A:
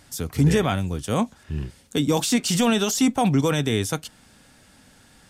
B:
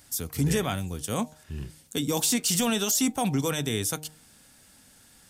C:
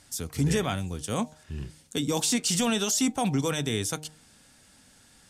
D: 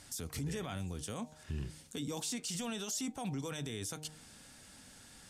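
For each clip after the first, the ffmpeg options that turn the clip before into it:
ffmpeg -i in.wav -af "aemphasis=mode=production:type=50kf,bandreject=frequency=153.9:width_type=h:width=4,bandreject=frequency=307.8:width_type=h:width=4,bandreject=frequency=461.7:width_type=h:width=4,bandreject=frequency=615.6:width_type=h:width=4,bandreject=frequency=769.5:width_type=h:width=4,bandreject=frequency=923.4:width_type=h:width=4,volume=-6.5dB" out.wav
ffmpeg -i in.wav -af "lowpass=9100" out.wav
ffmpeg -i in.wav -af "acompressor=threshold=-36dB:ratio=4,alimiter=level_in=8dB:limit=-24dB:level=0:latency=1:release=20,volume=-8dB,volume=1dB" out.wav

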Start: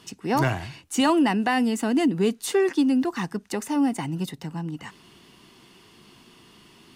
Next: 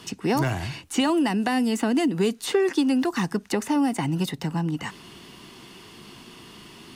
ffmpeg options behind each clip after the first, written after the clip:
ffmpeg -i in.wav -filter_complex "[0:a]acrossover=split=470|4400[link_01][link_02][link_03];[link_01]acompressor=threshold=-30dB:ratio=4[link_04];[link_02]acompressor=threshold=-35dB:ratio=4[link_05];[link_03]acompressor=threshold=-45dB:ratio=4[link_06];[link_04][link_05][link_06]amix=inputs=3:normalize=0,volume=7dB" out.wav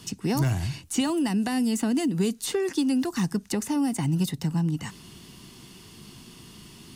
ffmpeg -i in.wav -af "bass=frequency=250:gain=11,treble=frequency=4000:gain=10,volume=-7dB" out.wav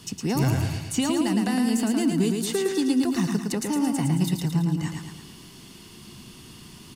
ffmpeg -i in.wav -af "aecho=1:1:111|222|333|444|555|666|777:0.631|0.322|0.164|0.0837|0.0427|0.0218|0.0111" out.wav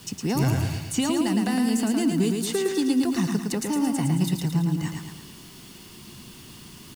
ffmpeg -i in.wav -af "acrusher=bits=7:mix=0:aa=0.000001" out.wav

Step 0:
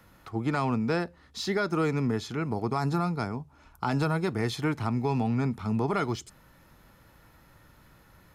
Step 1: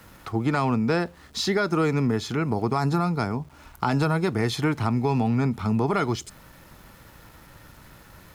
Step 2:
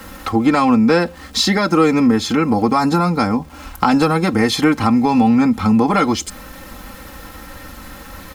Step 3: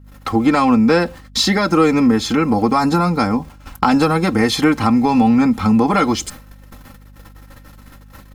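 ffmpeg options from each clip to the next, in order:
ffmpeg -i in.wav -af "acompressor=threshold=-35dB:ratio=1.5,aeval=exprs='val(0)*gte(abs(val(0)),0.00112)':channel_layout=same,volume=8.5dB" out.wav
ffmpeg -i in.wav -filter_complex "[0:a]aecho=1:1:3.8:0.8,asplit=2[link_01][link_02];[link_02]acompressor=threshold=-30dB:ratio=6,volume=0.5dB[link_03];[link_01][link_03]amix=inputs=2:normalize=0,volume=5.5dB" out.wav
ffmpeg -i in.wav -af "agate=range=-34dB:threshold=-32dB:ratio=16:detection=peak,aeval=exprs='val(0)+0.00891*(sin(2*PI*50*n/s)+sin(2*PI*2*50*n/s)/2+sin(2*PI*3*50*n/s)/3+sin(2*PI*4*50*n/s)/4+sin(2*PI*5*50*n/s)/5)':channel_layout=same" out.wav

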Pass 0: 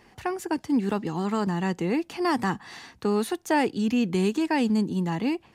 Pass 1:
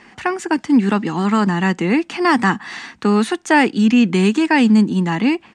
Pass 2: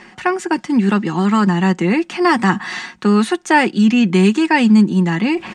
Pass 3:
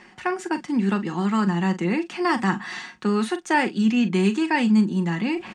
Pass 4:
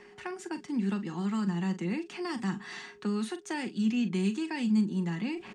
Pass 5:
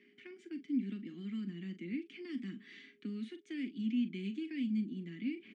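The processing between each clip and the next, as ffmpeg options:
ffmpeg -i in.wav -af "firequalizer=gain_entry='entry(110,0);entry(210,12);entry(450,5);entry(1300,13);entry(2000,14);entry(4400,8);entry(8600,9);entry(12000,-12)':delay=0.05:min_phase=1" out.wav
ffmpeg -i in.wav -af "aecho=1:1:5.5:0.46,areverse,acompressor=mode=upward:threshold=-18dB:ratio=2.5,areverse" out.wav
ffmpeg -i in.wav -filter_complex "[0:a]asplit=2[link_01][link_02];[link_02]adelay=41,volume=-12dB[link_03];[link_01][link_03]amix=inputs=2:normalize=0,volume=-8dB" out.wav
ffmpeg -i in.wav -filter_complex "[0:a]aeval=exprs='val(0)+0.00501*sin(2*PI*410*n/s)':channel_layout=same,acrossover=split=300|3000[link_01][link_02][link_03];[link_02]acompressor=threshold=-34dB:ratio=3[link_04];[link_01][link_04][link_03]amix=inputs=3:normalize=0,volume=-7dB" out.wav
ffmpeg -i in.wav -filter_complex "[0:a]asplit=3[link_01][link_02][link_03];[link_01]bandpass=frequency=270:width_type=q:width=8,volume=0dB[link_04];[link_02]bandpass=frequency=2290:width_type=q:width=8,volume=-6dB[link_05];[link_03]bandpass=frequency=3010:width_type=q:width=8,volume=-9dB[link_06];[link_04][link_05][link_06]amix=inputs=3:normalize=0,volume=2.5dB" out.wav

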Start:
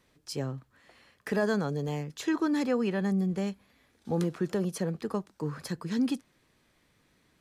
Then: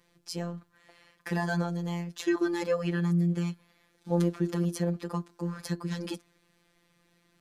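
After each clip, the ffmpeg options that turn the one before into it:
ffmpeg -i in.wav -af "bandreject=frequency=355.9:width_type=h:width=4,bandreject=frequency=711.8:width_type=h:width=4,bandreject=frequency=1067.7:width_type=h:width=4,bandreject=frequency=1423.6:width_type=h:width=4,bandreject=frequency=1779.5:width_type=h:width=4,bandreject=frequency=2135.4:width_type=h:width=4,bandreject=frequency=2491.3:width_type=h:width=4,bandreject=frequency=2847.2:width_type=h:width=4,bandreject=frequency=3203.1:width_type=h:width=4,bandreject=frequency=3559:width_type=h:width=4,bandreject=frequency=3914.9:width_type=h:width=4,bandreject=frequency=4270.8:width_type=h:width=4,afftfilt=real='hypot(re,im)*cos(PI*b)':imag='0':win_size=1024:overlap=0.75,volume=3.5dB" out.wav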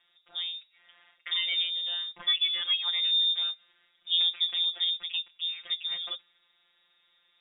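ffmpeg -i in.wav -af "lowpass=frequency=3200:width_type=q:width=0.5098,lowpass=frequency=3200:width_type=q:width=0.6013,lowpass=frequency=3200:width_type=q:width=0.9,lowpass=frequency=3200:width_type=q:width=2.563,afreqshift=-3800" out.wav

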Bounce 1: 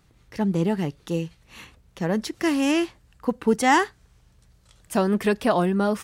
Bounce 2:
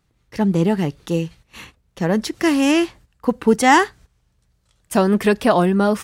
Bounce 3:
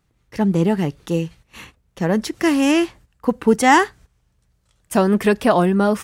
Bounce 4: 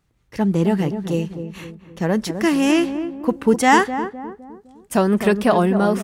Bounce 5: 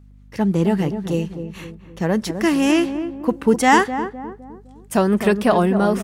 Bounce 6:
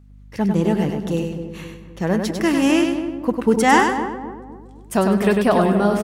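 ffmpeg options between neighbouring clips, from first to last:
ffmpeg -i in.wav -af "agate=range=-12dB:threshold=-47dB:ratio=16:detection=peak,volume=5.5dB" out.wav
ffmpeg -i in.wav -af "equalizer=frequency=4200:width_type=o:width=0.77:gain=-2.5" out.wav
ffmpeg -i in.wav -filter_complex "[0:a]asplit=2[link_01][link_02];[link_02]adelay=256,lowpass=frequency=810:poles=1,volume=-8dB,asplit=2[link_03][link_04];[link_04]adelay=256,lowpass=frequency=810:poles=1,volume=0.49,asplit=2[link_05][link_06];[link_06]adelay=256,lowpass=frequency=810:poles=1,volume=0.49,asplit=2[link_07][link_08];[link_08]adelay=256,lowpass=frequency=810:poles=1,volume=0.49,asplit=2[link_09][link_10];[link_10]adelay=256,lowpass=frequency=810:poles=1,volume=0.49,asplit=2[link_11][link_12];[link_12]adelay=256,lowpass=frequency=810:poles=1,volume=0.49[link_13];[link_01][link_03][link_05][link_07][link_09][link_11][link_13]amix=inputs=7:normalize=0,volume=-1dB" out.wav
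ffmpeg -i in.wav -af "aeval=exprs='val(0)+0.00562*(sin(2*PI*50*n/s)+sin(2*PI*2*50*n/s)/2+sin(2*PI*3*50*n/s)/3+sin(2*PI*4*50*n/s)/4+sin(2*PI*5*50*n/s)/5)':channel_layout=same" out.wav
ffmpeg -i in.wav -af "aecho=1:1:99|198|297:0.531|0.122|0.0281,volume=-1dB" out.wav

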